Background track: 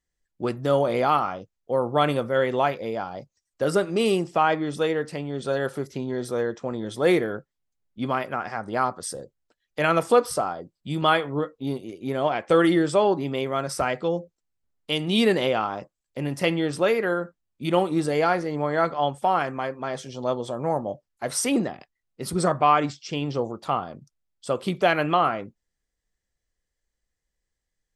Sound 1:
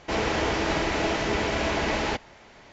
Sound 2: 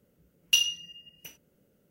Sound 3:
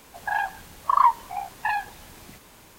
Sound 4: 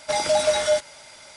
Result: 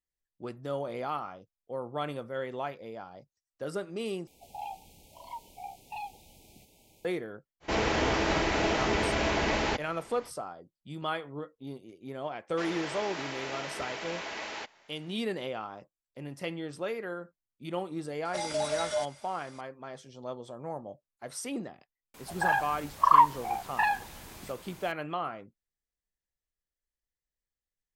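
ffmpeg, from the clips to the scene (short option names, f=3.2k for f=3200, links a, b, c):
-filter_complex "[3:a]asplit=2[a][b];[1:a]asplit=2[c][d];[0:a]volume=-13dB[e];[a]asuperstop=centerf=1400:order=12:qfactor=1[f];[d]highpass=f=940:p=1[g];[e]asplit=2[h][i];[h]atrim=end=4.274[j];[f]atrim=end=2.78,asetpts=PTS-STARTPTS,volume=-10dB[k];[i]atrim=start=7.046[l];[c]atrim=end=2.72,asetpts=PTS-STARTPTS,volume=-2dB,afade=t=in:d=0.05,afade=t=out:st=2.67:d=0.05,adelay=7600[m];[g]atrim=end=2.72,asetpts=PTS-STARTPTS,volume=-8.5dB,afade=t=in:d=0.004:c=hsin,afade=t=out:st=2.716:d=0.004:c=hsin,adelay=12490[n];[4:a]atrim=end=1.36,asetpts=PTS-STARTPTS,volume=-11dB,afade=t=in:d=0.004:c=hsin,afade=t=out:st=1.356:d=0.004:c=hsin,adelay=18250[o];[b]atrim=end=2.78,asetpts=PTS-STARTPTS,volume=-1dB,afade=t=in:d=0.004:c=hsin,afade=t=out:st=2.776:d=0.004:c=hsin,adelay=22140[p];[j][k]acrossfade=d=0.004:c1=hsin:c2=hsin[q];[q][l]acrossfade=d=0.004:c1=hsin:c2=hsin[r];[r][m][n][o][p]amix=inputs=5:normalize=0"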